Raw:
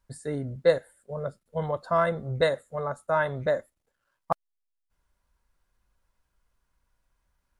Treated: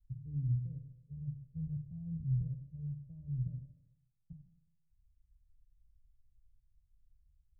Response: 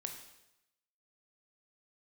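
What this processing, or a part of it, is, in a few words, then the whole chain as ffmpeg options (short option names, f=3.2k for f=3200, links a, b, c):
club heard from the street: -filter_complex "[0:a]alimiter=limit=-20dB:level=0:latency=1,lowpass=f=120:w=0.5412,lowpass=f=120:w=1.3066[a];[1:a]atrim=start_sample=2205[b];[a][b]afir=irnorm=-1:irlink=0,volume=7.5dB"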